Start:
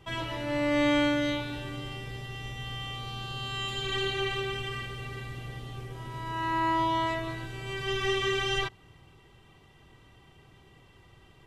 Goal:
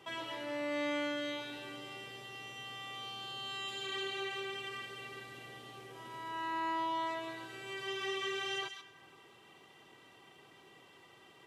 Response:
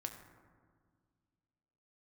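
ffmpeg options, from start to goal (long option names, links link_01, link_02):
-filter_complex "[0:a]asplit=2[link_01][link_02];[link_02]tiltshelf=frequency=970:gain=-9.5[link_03];[1:a]atrim=start_sample=2205,asetrate=41013,aresample=44100,adelay=132[link_04];[link_03][link_04]afir=irnorm=-1:irlink=0,volume=-13dB[link_05];[link_01][link_05]amix=inputs=2:normalize=0,acompressor=threshold=-52dB:ratio=1.5,highpass=290,volume=1dB"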